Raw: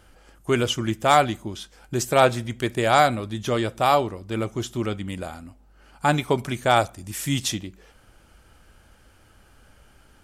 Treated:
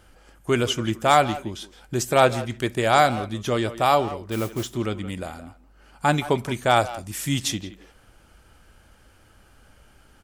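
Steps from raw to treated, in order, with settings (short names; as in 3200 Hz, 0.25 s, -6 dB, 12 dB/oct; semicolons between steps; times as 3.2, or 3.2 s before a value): 4.31–4.73 modulation noise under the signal 15 dB; speakerphone echo 0.17 s, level -13 dB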